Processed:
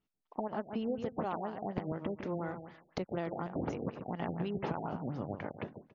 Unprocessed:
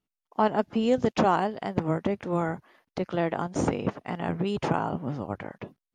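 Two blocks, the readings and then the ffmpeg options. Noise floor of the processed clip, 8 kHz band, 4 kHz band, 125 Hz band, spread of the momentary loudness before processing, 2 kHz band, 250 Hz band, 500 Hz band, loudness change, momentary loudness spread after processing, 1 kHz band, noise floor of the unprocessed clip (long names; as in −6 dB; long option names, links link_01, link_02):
−84 dBFS, below −15 dB, −12.5 dB, −8.5 dB, 13 LU, −11.5 dB, −9.5 dB, −10.0 dB, −10.5 dB, 6 LU, −11.5 dB, below −85 dBFS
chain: -af "acompressor=threshold=-34dB:ratio=5,aecho=1:1:141|282|423:0.376|0.0714|0.0136,afftfilt=real='re*lt(b*sr/1024,770*pow(7200/770,0.5+0.5*sin(2*PI*4.1*pts/sr)))':imag='im*lt(b*sr/1024,770*pow(7200/770,0.5+0.5*sin(2*PI*4.1*pts/sr)))':win_size=1024:overlap=0.75"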